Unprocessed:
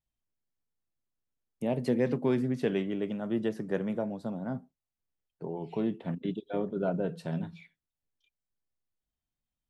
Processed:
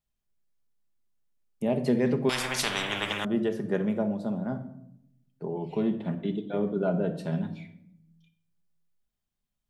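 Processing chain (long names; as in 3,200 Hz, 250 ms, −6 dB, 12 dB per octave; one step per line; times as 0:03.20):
rectangular room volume 2,100 cubic metres, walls furnished, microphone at 1.3 metres
0:02.29–0:03.25: every bin compressed towards the loudest bin 10 to 1
level +2 dB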